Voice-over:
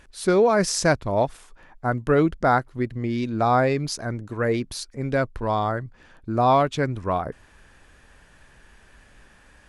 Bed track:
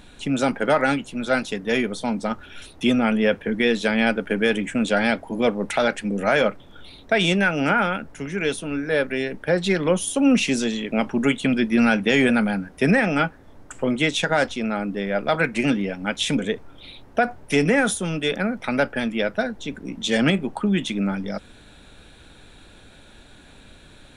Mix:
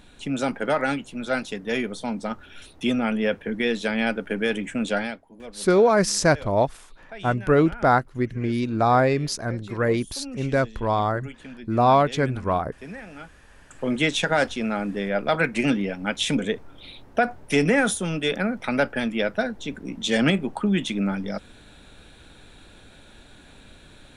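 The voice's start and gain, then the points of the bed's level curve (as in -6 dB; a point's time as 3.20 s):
5.40 s, +1.0 dB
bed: 4.97 s -4 dB
5.26 s -20.5 dB
13.46 s -20.5 dB
13.93 s -1 dB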